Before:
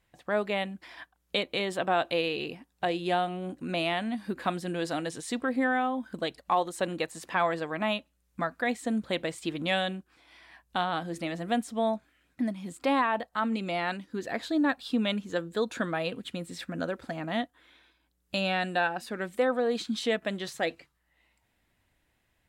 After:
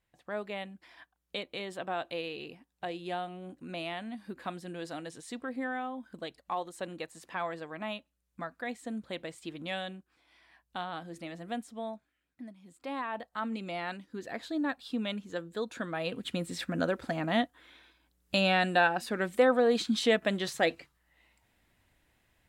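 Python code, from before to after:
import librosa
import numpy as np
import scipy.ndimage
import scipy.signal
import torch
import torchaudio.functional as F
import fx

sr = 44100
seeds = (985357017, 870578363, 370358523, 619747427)

y = fx.gain(x, sr, db=fx.line((11.55, -8.5), (12.6, -17.0), (13.28, -6.0), (15.87, -6.0), (16.31, 2.5)))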